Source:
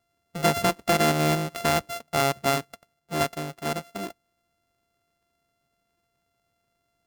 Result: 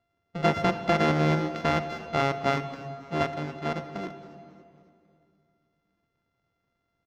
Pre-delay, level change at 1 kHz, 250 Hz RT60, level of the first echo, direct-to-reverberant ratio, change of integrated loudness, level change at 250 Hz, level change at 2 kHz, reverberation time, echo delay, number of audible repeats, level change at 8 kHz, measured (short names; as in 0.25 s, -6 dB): 11 ms, -1.5 dB, 2.9 s, -19.0 dB, 9.5 dB, -2.0 dB, +0.5 dB, -1.5 dB, 2.5 s, 0.273 s, 3, -16.0 dB